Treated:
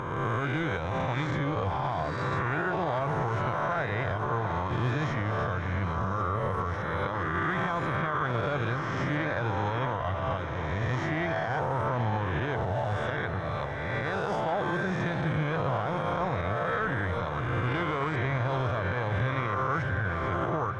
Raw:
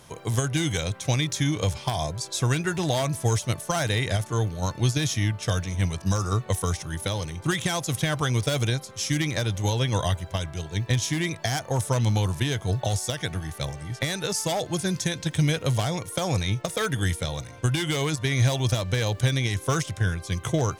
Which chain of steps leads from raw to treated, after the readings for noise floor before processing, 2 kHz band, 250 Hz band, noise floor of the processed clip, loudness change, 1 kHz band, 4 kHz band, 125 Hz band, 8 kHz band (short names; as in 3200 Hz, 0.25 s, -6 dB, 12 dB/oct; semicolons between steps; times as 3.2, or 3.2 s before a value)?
-44 dBFS, +0.5 dB, -4.0 dB, -32 dBFS, -3.5 dB, +4.0 dB, -13.5 dB, -6.0 dB, under -25 dB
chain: spectral swells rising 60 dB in 1.73 s; in parallel at -12 dB: sample-and-hold 20×; on the sum: synth low-pass 1300 Hz, resonance Q 1.8; tilt shelf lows -4 dB, about 750 Hz; on a send: diffused feedback echo 0.673 s, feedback 58%, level -11.5 dB; on the sum: limiter -15 dBFS, peak gain reduction 8.5 dB; upward compressor, threshold -32 dBFS; gain -5 dB